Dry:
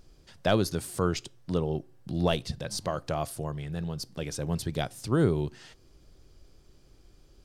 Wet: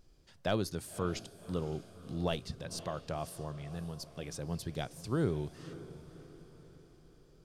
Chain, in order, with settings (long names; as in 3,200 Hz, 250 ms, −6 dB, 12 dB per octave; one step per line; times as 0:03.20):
pitch vibrato 9.8 Hz 5.2 cents
feedback delay with all-pass diffusion 553 ms, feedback 50%, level −15 dB
level −7.5 dB